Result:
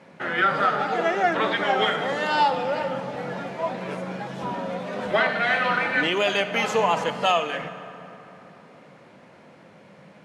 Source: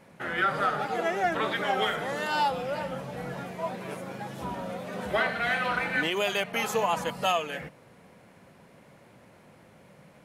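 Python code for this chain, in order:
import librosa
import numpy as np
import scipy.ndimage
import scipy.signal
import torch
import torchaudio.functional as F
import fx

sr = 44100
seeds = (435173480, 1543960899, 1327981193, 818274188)

y = fx.bandpass_edges(x, sr, low_hz=140.0, high_hz=5700.0)
y = fx.hum_notches(y, sr, base_hz=60, count=3)
y = fx.rev_fdn(y, sr, rt60_s=3.4, lf_ratio=1.0, hf_ratio=0.55, size_ms=33.0, drr_db=10.0)
y = F.gain(torch.from_numpy(y), 5.0).numpy()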